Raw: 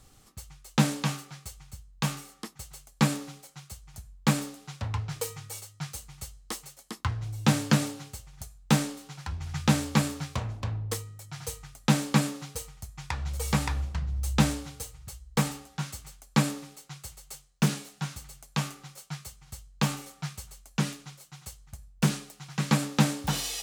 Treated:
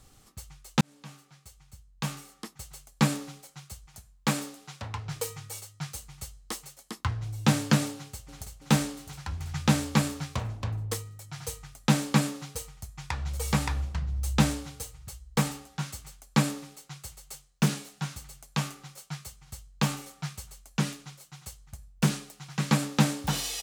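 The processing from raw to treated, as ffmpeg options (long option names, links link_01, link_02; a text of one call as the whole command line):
ffmpeg -i in.wav -filter_complex "[0:a]asettb=1/sr,asplit=3[link_01][link_02][link_03];[link_01]atrim=end=3.864[link_04];[link_02]atrim=start=3.86:end=5.06,asetpts=PTS-STARTPTS,afade=type=in:duration=0.004:curve=qsin,afade=type=out:start_time=1.196:duration=0.004:curve=qsin,lowshelf=frequency=160:gain=-9.5[link_05];[link_03]atrim=start=5.056[link_06];[link_04][link_05]acrossfade=duration=0.004:curve1=hsin:curve2=qsin[link_07];[link_07][link_06]acrossfade=duration=0.004:curve1=qsin:curve2=hsin,asplit=2[link_08][link_09];[link_09]afade=type=in:start_time=7.95:duration=0.01,afade=type=out:start_time=8.58:duration=0.01,aecho=0:1:330|660|990|1320|1650|1980|2310|2640|2970|3300|3630|3960:0.595662|0.416964|0.291874|0.204312|0.143018|0.100113|0.0700791|0.0490553|0.0343387|0.0240371|0.016826|0.0117782[link_10];[link_08][link_10]amix=inputs=2:normalize=0,asplit=2[link_11][link_12];[link_11]atrim=end=0.81,asetpts=PTS-STARTPTS,afade=type=out:start_time=0.806:duration=0.004:curve=hsin[link_13];[link_12]atrim=start=0.81,asetpts=PTS-STARTPTS,afade=type=in:duration=1.88[link_14];[link_13][link_14]concat=n=2:v=0:a=1" out.wav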